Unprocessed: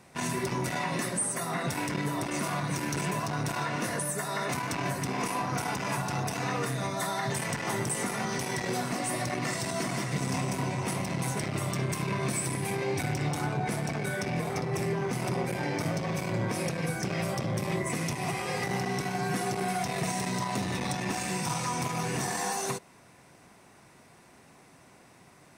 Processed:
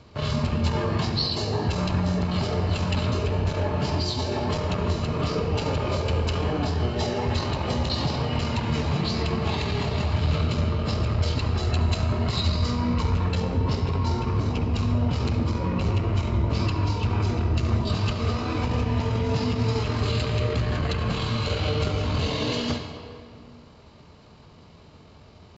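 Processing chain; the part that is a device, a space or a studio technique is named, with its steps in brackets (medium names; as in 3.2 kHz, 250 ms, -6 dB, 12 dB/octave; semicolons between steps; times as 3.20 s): monster voice (pitch shift -8.5 st; formant shift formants -4 st; bass shelf 150 Hz +5 dB; reverberation RT60 2.3 s, pre-delay 64 ms, DRR 6 dB); trim +4 dB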